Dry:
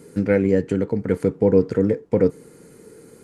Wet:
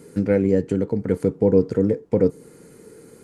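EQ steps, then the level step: dynamic EQ 1900 Hz, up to -6 dB, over -38 dBFS, Q 0.74; 0.0 dB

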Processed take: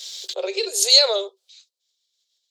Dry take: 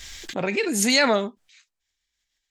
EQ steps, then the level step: rippled Chebyshev high-pass 370 Hz, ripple 6 dB; bell 510 Hz +12 dB 1.6 oct; resonant high shelf 2700 Hz +14 dB, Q 3; -6.5 dB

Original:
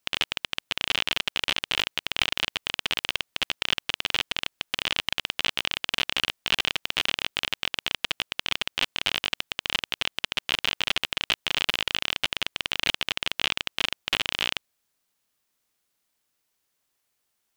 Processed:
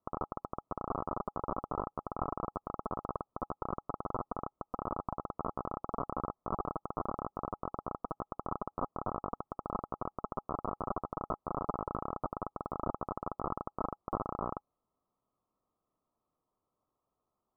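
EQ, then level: Chebyshev low-pass 1300 Hz, order 8; notch 830 Hz, Q 22; +2.5 dB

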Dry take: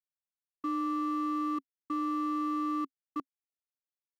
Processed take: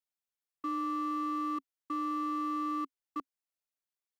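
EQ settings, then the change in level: bell 120 Hz -11 dB 1.9 oct; 0.0 dB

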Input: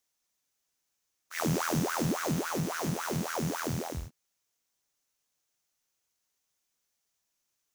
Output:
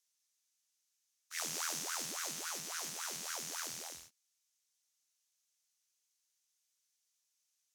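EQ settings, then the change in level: band-pass 6700 Hz, Q 0.6; +1.0 dB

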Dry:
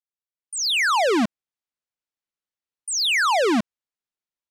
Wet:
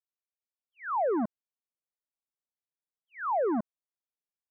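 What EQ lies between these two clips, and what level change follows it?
Gaussian blur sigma 8.7 samples; low shelf 470 Hz -11 dB; 0.0 dB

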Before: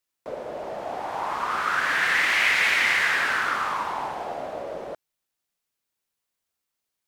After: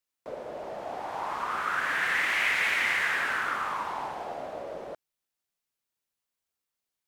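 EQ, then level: dynamic EQ 4700 Hz, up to -5 dB, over -40 dBFS, Q 1.3; -4.5 dB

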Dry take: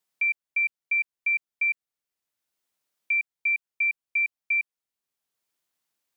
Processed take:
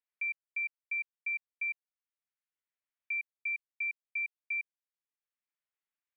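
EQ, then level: LPF 2300 Hz 24 dB/oct; differentiator; +3.0 dB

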